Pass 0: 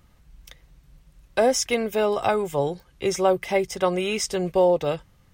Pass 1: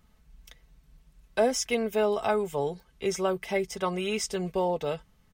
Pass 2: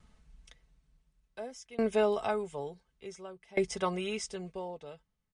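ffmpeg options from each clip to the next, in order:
-af "aecho=1:1:4.6:0.48,volume=-6dB"
-af "aresample=22050,aresample=44100,aeval=exprs='val(0)*pow(10,-24*if(lt(mod(0.56*n/s,1),2*abs(0.56)/1000),1-mod(0.56*n/s,1)/(2*abs(0.56)/1000),(mod(0.56*n/s,1)-2*abs(0.56)/1000)/(1-2*abs(0.56)/1000))/20)':c=same,volume=1.5dB"

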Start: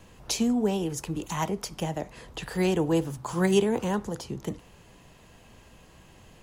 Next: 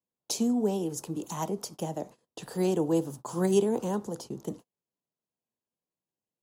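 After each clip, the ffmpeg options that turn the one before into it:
-af "highpass=190,agate=range=-38dB:threshold=-42dB:ratio=16:detection=peak,equalizer=f=2.1k:t=o:w=1.5:g=-13.5"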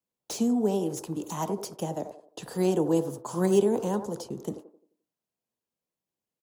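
-filter_complex "[0:a]acrossover=split=340|2000[a][b][c];[b]asplit=2[d][e];[e]adelay=87,lowpass=f=850:p=1,volume=-4.5dB,asplit=2[f][g];[g]adelay=87,lowpass=f=850:p=1,volume=0.45,asplit=2[h][i];[i]adelay=87,lowpass=f=850:p=1,volume=0.45,asplit=2[j][k];[k]adelay=87,lowpass=f=850:p=1,volume=0.45,asplit=2[l][m];[m]adelay=87,lowpass=f=850:p=1,volume=0.45,asplit=2[n][o];[o]adelay=87,lowpass=f=850:p=1,volume=0.45[p];[d][f][h][j][l][n][p]amix=inputs=7:normalize=0[q];[c]asoftclip=type=hard:threshold=-35dB[r];[a][q][r]amix=inputs=3:normalize=0,volume=1.5dB"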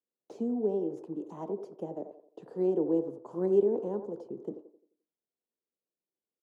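-af "bandpass=f=390:t=q:w=1.6:csg=0,volume=-1.5dB"

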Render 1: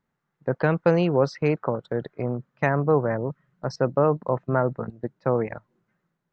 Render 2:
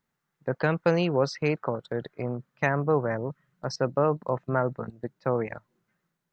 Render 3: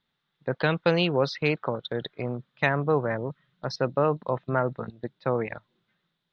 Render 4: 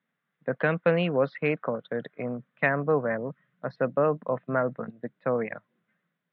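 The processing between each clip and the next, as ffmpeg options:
-af "highshelf=f=2.3k:g=9.5,volume=-4dB"
-af "lowpass=f=3.6k:t=q:w=6.4"
-af "highpass=f=150:w=0.5412,highpass=f=150:w=1.3066,equalizer=f=150:t=q:w=4:g=-3,equalizer=f=360:t=q:w=4:g=-9,equalizer=f=880:t=q:w=4:g=-9,equalizer=f=1.3k:t=q:w=4:g=-3,lowpass=f=2.2k:w=0.5412,lowpass=f=2.2k:w=1.3066,volume=2.5dB"

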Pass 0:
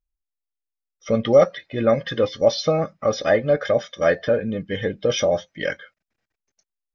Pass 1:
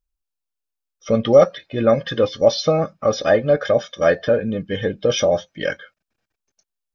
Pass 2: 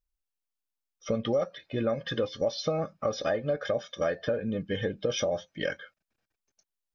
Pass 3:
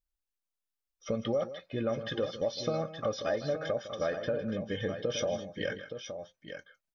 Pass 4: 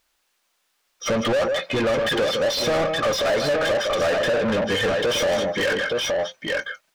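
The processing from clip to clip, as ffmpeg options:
-af "bandreject=f=2k:w=6.5,volume=2.5dB"
-af "acompressor=threshold=-21dB:ratio=4,volume=-5dB"
-af "aecho=1:1:157|870:0.2|0.355,volume=-3.5dB"
-filter_complex "[0:a]asplit=2[a][b];[b]highpass=f=720:p=1,volume=31dB,asoftclip=type=tanh:threshold=-19dB[c];[a][c]amix=inputs=2:normalize=0,lowpass=f=3.7k:p=1,volume=-6dB,volume=4.5dB"

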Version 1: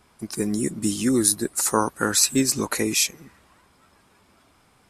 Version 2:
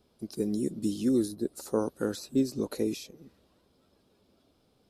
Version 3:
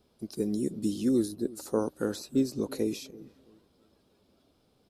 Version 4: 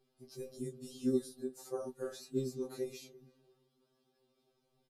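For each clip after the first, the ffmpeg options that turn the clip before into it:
-filter_complex "[0:a]equalizer=f=250:t=o:w=1:g=3,equalizer=f=500:t=o:w=1:g=7,equalizer=f=1k:t=o:w=1:g=-8,equalizer=f=2k:t=o:w=1:g=-11,equalizer=f=4k:t=o:w=1:g=6,equalizer=f=8k:t=o:w=1:g=-9,acrossover=split=1500[a][b];[b]acompressor=threshold=-34dB:ratio=6[c];[a][c]amix=inputs=2:normalize=0,volume=-8.5dB"
-filter_complex "[0:a]asplit=2[a][b];[b]adelay=334,lowpass=f=820:p=1,volume=-20dB,asplit=2[c][d];[d]adelay=334,lowpass=f=820:p=1,volume=0.35,asplit=2[e][f];[f]adelay=334,lowpass=f=820:p=1,volume=0.35[g];[a][c][e][g]amix=inputs=4:normalize=0"
-filter_complex "[0:a]flanger=delay=4.7:depth=7.6:regen=72:speed=1.7:shape=triangular,asplit=2[a][b];[b]adelay=13,volume=-3dB[c];[a][c]amix=inputs=2:normalize=0,afftfilt=real='re*2.45*eq(mod(b,6),0)':imag='im*2.45*eq(mod(b,6),0)':win_size=2048:overlap=0.75,volume=-4dB"

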